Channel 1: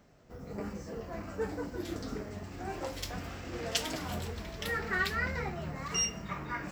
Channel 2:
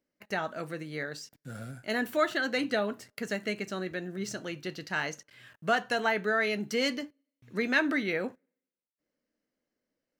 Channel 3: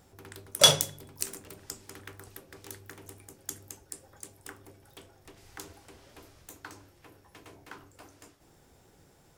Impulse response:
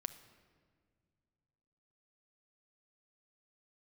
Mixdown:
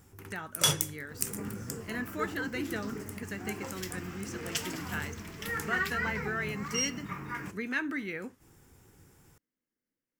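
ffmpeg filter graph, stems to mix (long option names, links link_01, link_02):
-filter_complex "[0:a]highpass=110,adelay=800,volume=1dB[link_01];[1:a]volume=-4.5dB,asplit=2[link_02][link_03];[2:a]volume=2dB[link_04];[link_03]apad=whole_len=413606[link_05];[link_04][link_05]sidechaincompress=threshold=-43dB:ratio=8:attack=23:release=233[link_06];[link_01][link_02][link_06]amix=inputs=3:normalize=0,equalizer=frequency=100:width_type=o:width=0.67:gain=3,equalizer=frequency=630:width_type=o:width=0.67:gain=-12,equalizer=frequency=4000:width_type=o:width=0.67:gain=-8,equalizer=frequency=16000:width_type=o:width=0.67:gain=4"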